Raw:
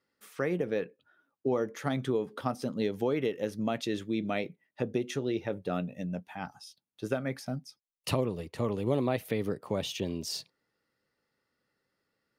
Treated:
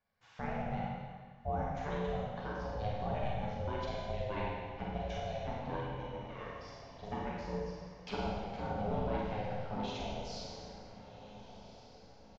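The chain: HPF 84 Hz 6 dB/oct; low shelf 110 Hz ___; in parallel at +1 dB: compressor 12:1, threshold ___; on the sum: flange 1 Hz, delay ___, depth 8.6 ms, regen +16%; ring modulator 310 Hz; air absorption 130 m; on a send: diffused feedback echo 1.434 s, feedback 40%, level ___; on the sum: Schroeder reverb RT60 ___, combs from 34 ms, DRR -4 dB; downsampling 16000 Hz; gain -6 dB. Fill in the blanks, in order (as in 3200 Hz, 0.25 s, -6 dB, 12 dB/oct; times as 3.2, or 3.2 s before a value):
+3 dB, -41 dBFS, 6.9 ms, -14 dB, 1.6 s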